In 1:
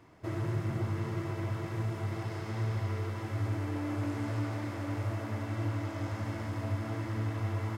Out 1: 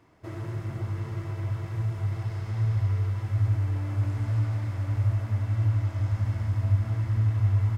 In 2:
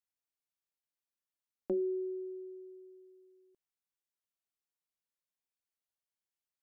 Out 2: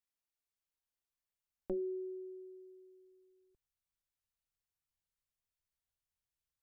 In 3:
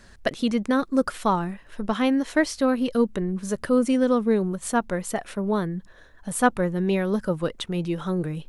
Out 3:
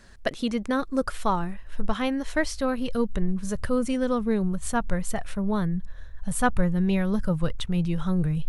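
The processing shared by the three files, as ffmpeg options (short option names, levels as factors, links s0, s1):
-af "asubboost=boost=11.5:cutoff=94,volume=0.794"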